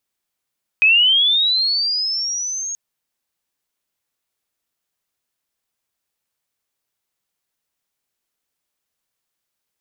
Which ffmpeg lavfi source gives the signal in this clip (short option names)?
-f lavfi -i "aevalsrc='pow(10,(-9-14.5*t/1.93)/20)*sin(2*PI*(2500*t+4100*t*t/(2*1.93)))':d=1.93:s=44100"